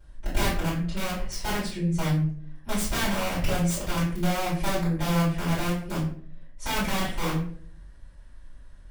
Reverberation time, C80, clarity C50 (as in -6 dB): 0.55 s, 9.0 dB, 4.0 dB